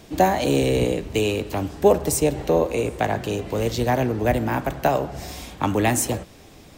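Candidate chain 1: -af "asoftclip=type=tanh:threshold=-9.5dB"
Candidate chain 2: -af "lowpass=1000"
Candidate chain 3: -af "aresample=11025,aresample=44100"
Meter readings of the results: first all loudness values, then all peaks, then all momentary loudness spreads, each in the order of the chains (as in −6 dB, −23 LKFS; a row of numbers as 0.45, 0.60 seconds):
−23.5, −23.5, −22.5 LKFS; −10.0, −4.0, −3.5 dBFS; 6, 9, 8 LU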